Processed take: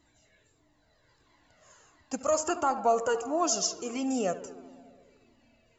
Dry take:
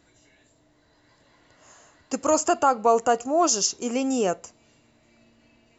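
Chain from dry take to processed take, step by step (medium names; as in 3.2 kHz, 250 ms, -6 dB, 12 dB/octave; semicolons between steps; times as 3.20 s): filtered feedback delay 72 ms, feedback 80%, low-pass 3.2 kHz, level -14.5 dB; Shepard-style flanger falling 1.5 Hz; trim -1.5 dB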